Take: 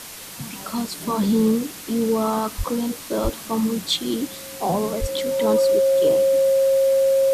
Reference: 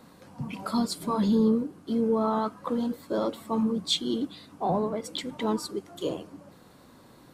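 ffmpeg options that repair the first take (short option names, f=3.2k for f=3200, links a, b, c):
-filter_complex "[0:a]bandreject=f=540:w=30,asplit=3[a][b][c];[a]afade=t=out:st=2.57:d=0.02[d];[b]highpass=f=140:w=0.5412,highpass=f=140:w=1.3066,afade=t=in:st=2.57:d=0.02,afade=t=out:st=2.69:d=0.02[e];[c]afade=t=in:st=2.69:d=0.02[f];[d][e][f]amix=inputs=3:normalize=0,asplit=3[g][h][i];[g]afade=t=out:st=3.23:d=0.02[j];[h]highpass=f=140:w=0.5412,highpass=f=140:w=1.3066,afade=t=in:st=3.23:d=0.02,afade=t=out:st=3.35:d=0.02[k];[i]afade=t=in:st=3.35:d=0.02[l];[j][k][l]amix=inputs=3:normalize=0,asplit=3[m][n][o];[m]afade=t=out:st=5:d=0.02[p];[n]highpass=f=140:w=0.5412,highpass=f=140:w=1.3066,afade=t=in:st=5:d=0.02,afade=t=out:st=5.12:d=0.02[q];[o]afade=t=in:st=5.12:d=0.02[r];[p][q][r]amix=inputs=3:normalize=0,afwtdn=0.016,asetnsamples=n=441:p=0,asendcmd='0.93 volume volume -4dB',volume=0dB"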